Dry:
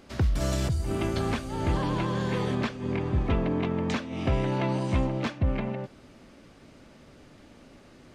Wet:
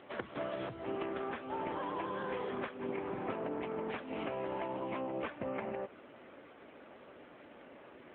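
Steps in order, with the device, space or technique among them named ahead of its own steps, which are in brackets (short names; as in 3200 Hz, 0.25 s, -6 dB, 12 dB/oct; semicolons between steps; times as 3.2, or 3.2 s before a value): voicemail (BPF 400–2600 Hz; compressor 10:1, threshold -38 dBFS, peak gain reduction 11 dB; gain +4 dB; AMR-NB 7.95 kbps 8000 Hz)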